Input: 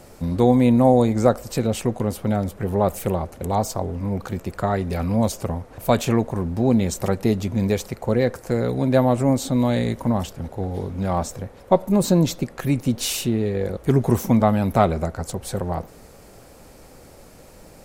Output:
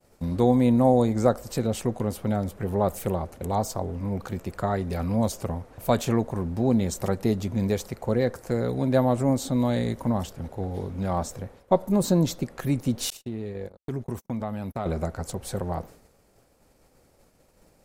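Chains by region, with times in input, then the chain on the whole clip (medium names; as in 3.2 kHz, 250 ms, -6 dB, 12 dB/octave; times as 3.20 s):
13.10–14.86 s: gate -25 dBFS, range -48 dB + compression 2:1, threshold -30 dBFS
whole clip: expander -37 dBFS; dynamic bell 2.5 kHz, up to -4 dB, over -44 dBFS, Q 2.7; trim -4 dB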